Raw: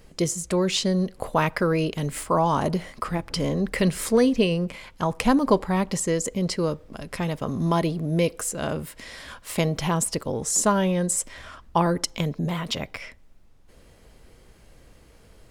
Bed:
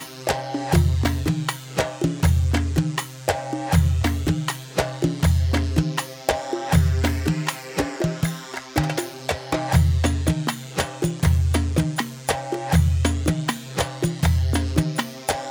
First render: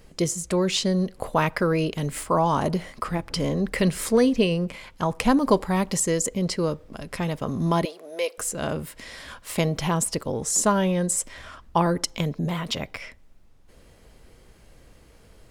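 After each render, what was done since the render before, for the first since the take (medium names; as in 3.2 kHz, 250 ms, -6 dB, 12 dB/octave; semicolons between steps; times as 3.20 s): 5.43–6.26 s: treble shelf 5.5 kHz +6 dB; 7.85–8.38 s: high-pass 490 Hz 24 dB/octave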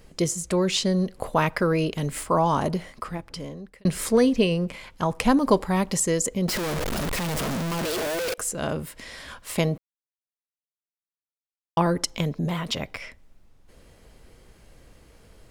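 2.52–3.85 s: fade out; 6.48–8.34 s: one-bit comparator; 9.78–11.77 s: mute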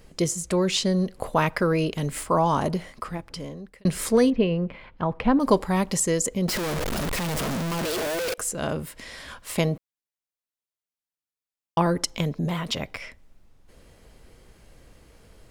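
4.30–5.40 s: distance through air 380 m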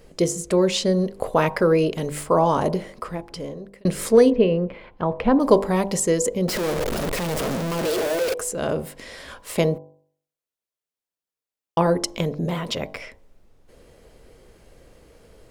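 peaking EQ 470 Hz +7.5 dB 1.2 oct; de-hum 49.31 Hz, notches 22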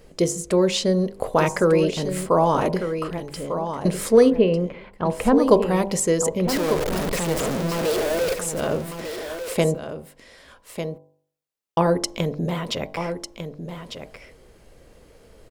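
delay 1199 ms -9 dB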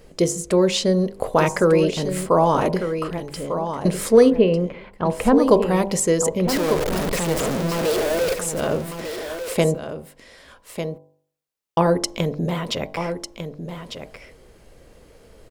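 trim +1.5 dB; peak limiter -3 dBFS, peak gain reduction 1.5 dB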